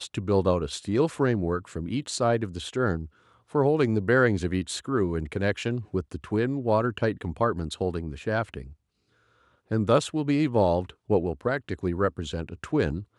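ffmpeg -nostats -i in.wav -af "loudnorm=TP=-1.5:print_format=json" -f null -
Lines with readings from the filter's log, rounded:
"input_i" : "-26.8",
"input_tp" : "-7.9",
"input_lra" : "2.5",
"input_thresh" : "-37.1",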